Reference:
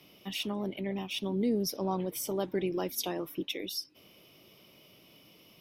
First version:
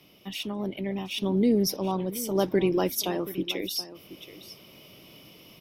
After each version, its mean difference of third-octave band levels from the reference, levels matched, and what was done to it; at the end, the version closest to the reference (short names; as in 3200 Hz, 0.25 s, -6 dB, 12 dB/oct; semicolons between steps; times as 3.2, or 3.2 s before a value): 3.0 dB: low shelf 130 Hz +4 dB; random-step tremolo 1.7 Hz; echo 0.727 s -15.5 dB; gain +7.5 dB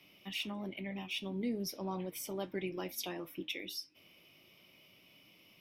1.5 dB: bell 440 Hz -5 dB 0.25 oct; flange 0.37 Hz, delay 10 ms, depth 2.2 ms, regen -68%; bell 2300 Hz +8 dB 0.75 oct; gain -2.5 dB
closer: second